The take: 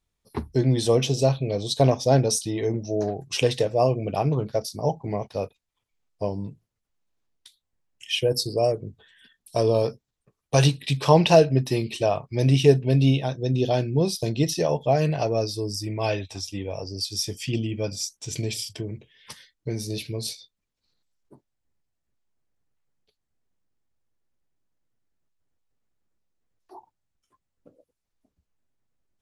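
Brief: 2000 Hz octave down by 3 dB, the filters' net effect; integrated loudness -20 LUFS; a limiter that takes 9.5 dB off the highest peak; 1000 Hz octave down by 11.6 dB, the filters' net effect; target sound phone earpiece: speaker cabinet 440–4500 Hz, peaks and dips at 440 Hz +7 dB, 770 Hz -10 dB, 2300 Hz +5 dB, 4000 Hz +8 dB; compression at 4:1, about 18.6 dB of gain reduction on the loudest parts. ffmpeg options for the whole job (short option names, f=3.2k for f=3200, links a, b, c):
-af "equalizer=f=1k:t=o:g=-8,equalizer=f=2k:t=o:g=-7,acompressor=threshold=-35dB:ratio=4,alimiter=level_in=5.5dB:limit=-24dB:level=0:latency=1,volume=-5.5dB,highpass=440,equalizer=f=440:t=q:w=4:g=7,equalizer=f=770:t=q:w=4:g=-10,equalizer=f=2.3k:t=q:w=4:g=5,equalizer=f=4k:t=q:w=4:g=8,lowpass=f=4.5k:w=0.5412,lowpass=f=4.5k:w=1.3066,volume=22.5dB"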